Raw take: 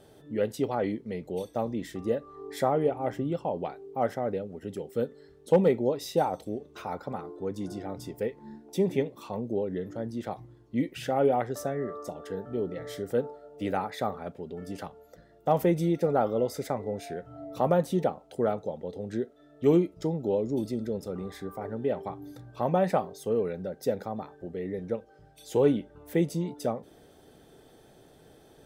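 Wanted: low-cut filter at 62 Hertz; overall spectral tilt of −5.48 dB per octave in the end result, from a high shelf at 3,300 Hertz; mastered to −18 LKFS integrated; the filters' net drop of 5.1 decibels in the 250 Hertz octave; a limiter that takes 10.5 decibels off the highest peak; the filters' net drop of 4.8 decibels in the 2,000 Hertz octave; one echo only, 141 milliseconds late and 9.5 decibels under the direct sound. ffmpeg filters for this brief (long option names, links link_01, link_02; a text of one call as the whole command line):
ffmpeg -i in.wav -af "highpass=62,equalizer=frequency=250:width_type=o:gain=-7.5,equalizer=frequency=2000:width_type=o:gain=-8.5,highshelf=frequency=3300:gain=7.5,alimiter=limit=-22dB:level=0:latency=1,aecho=1:1:141:0.335,volume=16.5dB" out.wav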